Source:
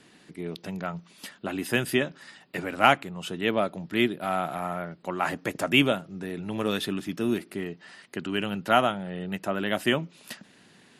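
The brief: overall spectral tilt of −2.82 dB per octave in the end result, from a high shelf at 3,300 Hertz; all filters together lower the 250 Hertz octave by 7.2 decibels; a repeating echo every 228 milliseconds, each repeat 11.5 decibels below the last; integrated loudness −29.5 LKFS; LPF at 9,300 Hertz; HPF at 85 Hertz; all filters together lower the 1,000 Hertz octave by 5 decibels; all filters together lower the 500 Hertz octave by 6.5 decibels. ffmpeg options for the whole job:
ffmpeg -i in.wav -af "highpass=85,lowpass=9300,equalizer=frequency=250:width_type=o:gain=-7.5,equalizer=frequency=500:width_type=o:gain=-5,equalizer=frequency=1000:width_type=o:gain=-4,highshelf=frequency=3300:gain=-8,aecho=1:1:228|456|684:0.266|0.0718|0.0194,volume=3dB" out.wav

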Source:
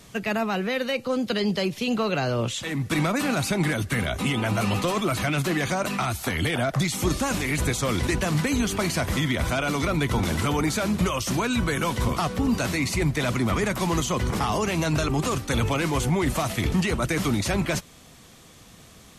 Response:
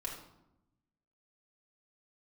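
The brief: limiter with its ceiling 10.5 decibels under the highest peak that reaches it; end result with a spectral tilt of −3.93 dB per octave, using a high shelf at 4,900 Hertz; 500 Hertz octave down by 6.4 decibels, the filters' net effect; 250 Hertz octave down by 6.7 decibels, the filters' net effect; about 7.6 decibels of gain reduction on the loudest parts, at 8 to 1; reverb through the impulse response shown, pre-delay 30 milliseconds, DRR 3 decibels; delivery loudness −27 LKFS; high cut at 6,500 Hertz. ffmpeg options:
-filter_complex "[0:a]lowpass=6500,equalizer=frequency=250:width_type=o:gain=-8,equalizer=frequency=500:width_type=o:gain=-6,highshelf=frequency=4900:gain=5,acompressor=threshold=-30dB:ratio=8,alimiter=level_in=5dB:limit=-24dB:level=0:latency=1,volume=-5dB,asplit=2[link_01][link_02];[1:a]atrim=start_sample=2205,adelay=30[link_03];[link_02][link_03]afir=irnorm=-1:irlink=0,volume=-3.5dB[link_04];[link_01][link_04]amix=inputs=2:normalize=0,volume=8.5dB"

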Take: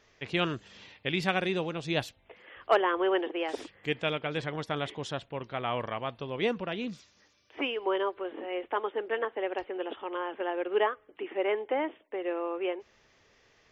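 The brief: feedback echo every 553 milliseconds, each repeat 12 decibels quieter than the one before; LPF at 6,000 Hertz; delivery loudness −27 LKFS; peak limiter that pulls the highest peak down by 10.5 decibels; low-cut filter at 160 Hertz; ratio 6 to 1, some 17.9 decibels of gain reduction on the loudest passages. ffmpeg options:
ffmpeg -i in.wav -af "highpass=160,lowpass=6000,acompressor=threshold=-38dB:ratio=6,alimiter=level_in=9.5dB:limit=-24dB:level=0:latency=1,volume=-9.5dB,aecho=1:1:553|1106|1659:0.251|0.0628|0.0157,volume=17.5dB" out.wav

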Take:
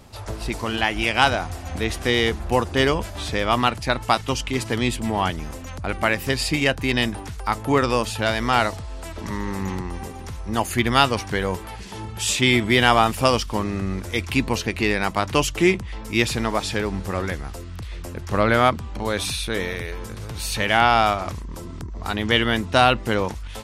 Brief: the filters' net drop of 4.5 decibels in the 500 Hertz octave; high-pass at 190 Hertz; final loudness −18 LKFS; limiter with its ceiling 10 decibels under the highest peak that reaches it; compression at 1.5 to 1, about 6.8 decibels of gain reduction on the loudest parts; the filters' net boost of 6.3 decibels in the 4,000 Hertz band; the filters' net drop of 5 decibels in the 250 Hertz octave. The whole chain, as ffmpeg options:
ffmpeg -i in.wav -af "highpass=190,equalizer=frequency=250:width_type=o:gain=-3,equalizer=frequency=500:width_type=o:gain=-5,equalizer=frequency=4000:width_type=o:gain=8.5,acompressor=threshold=-29dB:ratio=1.5,volume=10.5dB,alimiter=limit=-3dB:level=0:latency=1" out.wav

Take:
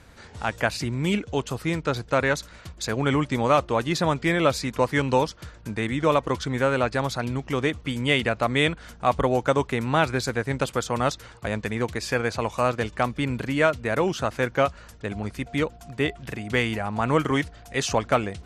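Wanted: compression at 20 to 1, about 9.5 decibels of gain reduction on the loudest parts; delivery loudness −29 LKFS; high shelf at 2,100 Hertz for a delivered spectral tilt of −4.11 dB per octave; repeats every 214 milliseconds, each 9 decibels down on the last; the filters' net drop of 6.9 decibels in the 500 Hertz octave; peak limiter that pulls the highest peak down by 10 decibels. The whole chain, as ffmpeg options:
ffmpeg -i in.wav -af "equalizer=frequency=500:width_type=o:gain=-9,highshelf=frequency=2100:gain=6,acompressor=threshold=-25dB:ratio=20,alimiter=limit=-22dB:level=0:latency=1,aecho=1:1:214|428|642|856:0.355|0.124|0.0435|0.0152,volume=3.5dB" out.wav

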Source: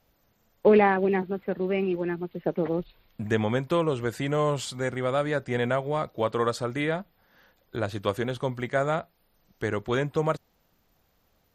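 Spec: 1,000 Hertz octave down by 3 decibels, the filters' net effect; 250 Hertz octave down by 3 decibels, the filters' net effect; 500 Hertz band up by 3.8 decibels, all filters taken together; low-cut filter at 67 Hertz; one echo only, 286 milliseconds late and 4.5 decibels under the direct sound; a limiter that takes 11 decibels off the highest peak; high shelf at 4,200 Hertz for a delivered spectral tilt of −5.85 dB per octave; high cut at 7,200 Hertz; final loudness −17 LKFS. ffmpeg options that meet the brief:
ffmpeg -i in.wav -af "highpass=67,lowpass=7200,equalizer=frequency=250:width_type=o:gain=-8,equalizer=frequency=500:width_type=o:gain=8.5,equalizer=frequency=1000:width_type=o:gain=-6.5,highshelf=frequency=4200:gain=-7.5,alimiter=limit=-17dB:level=0:latency=1,aecho=1:1:286:0.596,volume=10dB" out.wav

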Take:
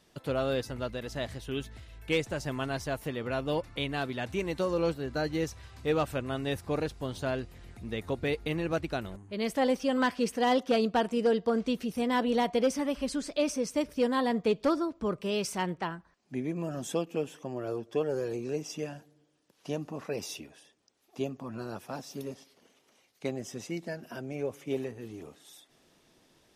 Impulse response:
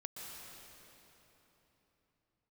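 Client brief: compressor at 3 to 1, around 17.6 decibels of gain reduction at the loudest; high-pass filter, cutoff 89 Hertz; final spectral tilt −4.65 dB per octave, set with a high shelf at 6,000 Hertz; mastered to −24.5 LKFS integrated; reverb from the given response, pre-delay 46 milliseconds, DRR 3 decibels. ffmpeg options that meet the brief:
-filter_complex "[0:a]highpass=89,highshelf=frequency=6000:gain=6,acompressor=threshold=-47dB:ratio=3,asplit=2[link_01][link_02];[1:a]atrim=start_sample=2205,adelay=46[link_03];[link_02][link_03]afir=irnorm=-1:irlink=0,volume=-1dB[link_04];[link_01][link_04]amix=inputs=2:normalize=0,volume=20dB"

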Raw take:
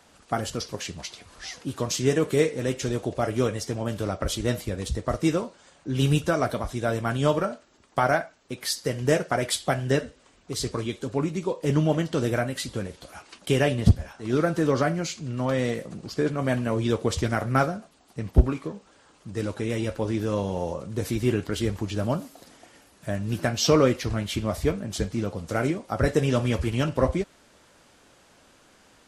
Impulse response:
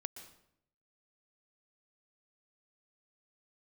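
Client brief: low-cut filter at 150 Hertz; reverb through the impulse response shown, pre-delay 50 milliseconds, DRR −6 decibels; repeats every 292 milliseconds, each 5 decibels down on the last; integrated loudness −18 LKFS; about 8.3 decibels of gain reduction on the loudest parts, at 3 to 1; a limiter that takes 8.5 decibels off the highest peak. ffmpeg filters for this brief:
-filter_complex "[0:a]highpass=150,acompressor=threshold=-27dB:ratio=3,alimiter=limit=-20.5dB:level=0:latency=1,aecho=1:1:292|584|876|1168|1460|1752|2044:0.562|0.315|0.176|0.0988|0.0553|0.031|0.0173,asplit=2[link_01][link_02];[1:a]atrim=start_sample=2205,adelay=50[link_03];[link_02][link_03]afir=irnorm=-1:irlink=0,volume=8.5dB[link_04];[link_01][link_04]amix=inputs=2:normalize=0,volume=7dB"

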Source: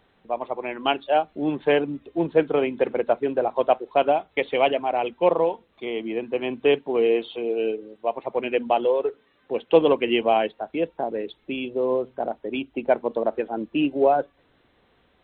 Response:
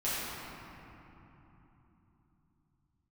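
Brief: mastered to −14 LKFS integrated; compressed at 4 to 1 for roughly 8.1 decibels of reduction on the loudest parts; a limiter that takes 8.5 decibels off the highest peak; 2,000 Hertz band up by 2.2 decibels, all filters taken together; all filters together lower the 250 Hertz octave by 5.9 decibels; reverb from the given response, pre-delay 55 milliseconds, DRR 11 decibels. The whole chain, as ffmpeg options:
-filter_complex "[0:a]equalizer=frequency=250:width_type=o:gain=-8.5,equalizer=frequency=2000:width_type=o:gain=3,acompressor=threshold=-24dB:ratio=4,alimiter=limit=-20.5dB:level=0:latency=1,asplit=2[link_01][link_02];[1:a]atrim=start_sample=2205,adelay=55[link_03];[link_02][link_03]afir=irnorm=-1:irlink=0,volume=-19.5dB[link_04];[link_01][link_04]amix=inputs=2:normalize=0,volume=18dB"

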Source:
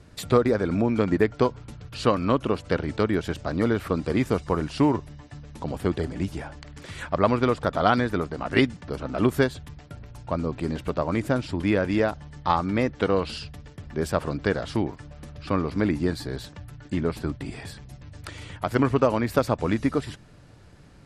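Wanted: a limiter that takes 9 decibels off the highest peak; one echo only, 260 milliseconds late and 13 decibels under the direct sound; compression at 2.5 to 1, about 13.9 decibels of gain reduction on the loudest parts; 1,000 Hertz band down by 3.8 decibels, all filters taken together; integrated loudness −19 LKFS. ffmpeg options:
ffmpeg -i in.wav -af "equalizer=frequency=1000:width_type=o:gain=-5,acompressor=threshold=-38dB:ratio=2.5,alimiter=level_in=4.5dB:limit=-24dB:level=0:latency=1,volume=-4.5dB,aecho=1:1:260:0.224,volume=22dB" out.wav

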